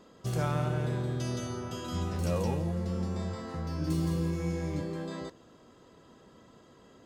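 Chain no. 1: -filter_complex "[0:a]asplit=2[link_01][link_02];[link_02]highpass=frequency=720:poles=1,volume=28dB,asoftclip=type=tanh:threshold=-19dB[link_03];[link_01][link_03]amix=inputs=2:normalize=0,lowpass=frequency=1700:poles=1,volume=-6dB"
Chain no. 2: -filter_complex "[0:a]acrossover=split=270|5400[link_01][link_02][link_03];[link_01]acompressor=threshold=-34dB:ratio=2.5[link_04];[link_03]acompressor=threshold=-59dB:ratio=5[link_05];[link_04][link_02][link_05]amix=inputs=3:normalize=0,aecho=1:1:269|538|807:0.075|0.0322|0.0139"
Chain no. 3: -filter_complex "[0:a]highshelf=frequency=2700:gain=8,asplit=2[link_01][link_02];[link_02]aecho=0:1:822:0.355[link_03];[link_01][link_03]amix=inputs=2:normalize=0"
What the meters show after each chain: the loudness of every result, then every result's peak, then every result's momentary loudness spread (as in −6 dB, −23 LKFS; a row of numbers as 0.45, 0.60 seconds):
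−28.0, −35.0, −32.5 LKFS; −19.0, −20.0, −18.0 dBFS; 15, 6, 13 LU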